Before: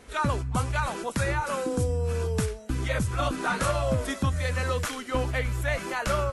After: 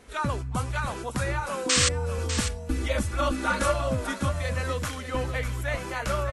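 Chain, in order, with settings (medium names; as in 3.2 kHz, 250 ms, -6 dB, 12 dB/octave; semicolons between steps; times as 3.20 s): 1.69–1.89 s: painted sound noise 1–8.8 kHz -20 dBFS; 2.18–3.74 s: comb 3.5 ms, depth 91%; delay 598 ms -9.5 dB; trim -2 dB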